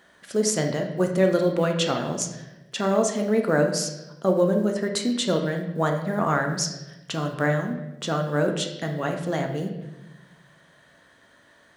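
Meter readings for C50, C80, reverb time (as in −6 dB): 6.5 dB, 9.5 dB, 1.0 s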